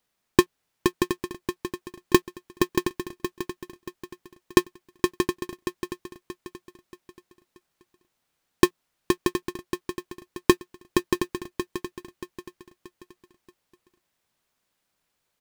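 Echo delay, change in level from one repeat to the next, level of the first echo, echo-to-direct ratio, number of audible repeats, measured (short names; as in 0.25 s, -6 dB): 0.63 s, -8.5 dB, -7.5 dB, -7.0 dB, 4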